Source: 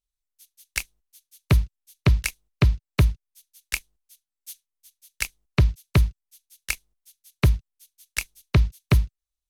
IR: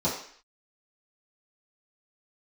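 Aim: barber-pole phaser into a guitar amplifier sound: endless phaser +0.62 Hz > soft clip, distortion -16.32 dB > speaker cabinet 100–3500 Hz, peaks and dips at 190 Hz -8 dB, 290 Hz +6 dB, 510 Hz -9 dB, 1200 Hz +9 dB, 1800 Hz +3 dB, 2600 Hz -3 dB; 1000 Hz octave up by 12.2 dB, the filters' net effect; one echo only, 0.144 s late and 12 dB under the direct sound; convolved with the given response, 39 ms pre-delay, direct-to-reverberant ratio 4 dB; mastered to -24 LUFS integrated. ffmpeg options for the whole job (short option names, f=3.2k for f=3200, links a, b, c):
-filter_complex "[0:a]equalizer=f=1k:t=o:g=8,aecho=1:1:144:0.251,asplit=2[a][b];[1:a]atrim=start_sample=2205,adelay=39[c];[b][c]afir=irnorm=-1:irlink=0,volume=-15dB[d];[a][d]amix=inputs=2:normalize=0,asplit=2[e][f];[f]afreqshift=0.62[g];[e][g]amix=inputs=2:normalize=1,asoftclip=threshold=-13dB,highpass=100,equalizer=f=190:t=q:w=4:g=-8,equalizer=f=290:t=q:w=4:g=6,equalizer=f=510:t=q:w=4:g=-9,equalizer=f=1.2k:t=q:w=4:g=9,equalizer=f=1.8k:t=q:w=4:g=3,equalizer=f=2.6k:t=q:w=4:g=-3,lowpass=f=3.5k:w=0.5412,lowpass=f=3.5k:w=1.3066,volume=6.5dB"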